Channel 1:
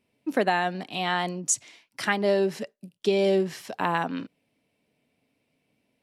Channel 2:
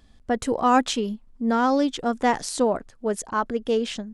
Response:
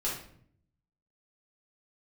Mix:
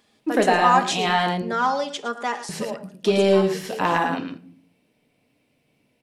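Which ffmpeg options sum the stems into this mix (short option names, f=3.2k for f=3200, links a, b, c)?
-filter_complex "[0:a]asoftclip=type=tanh:threshold=-11.5dB,volume=2dB,asplit=3[a][b][c];[a]atrim=end=1.42,asetpts=PTS-STARTPTS,afade=t=out:st=1.416:d=0.004:c=hsin[d];[b]atrim=start=1.42:end=2.49,asetpts=PTS-STARTPTS,volume=0[e];[c]atrim=start=2.49,asetpts=PTS-STARTPTS,afade=t=in:d=0.004:c=hsin[f];[d][e][f]concat=n=3:v=0:a=1,asplit=3[g][h][i];[h]volume=-8dB[j];[i]volume=-3dB[k];[1:a]highpass=520,aecho=1:1:4.9:0.69,volume=-1.5dB,afade=t=out:st=2.13:d=0.44:silence=0.316228,asplit=3[l][m][n];[m]volume=-14.5dB[o];[n]volume=-12dB[p];[2:a]atrim=start_sample=2205[q];[j][o]amix=inputs=2:normalize=0[r];[r][q]afir=irnorm=-1:irlink=0[s];[k][p]amix=inputs=2:normalize=0,aecho=0:1:111:1[t];[g][l][s][t]amix=inputs=4:normalize=0"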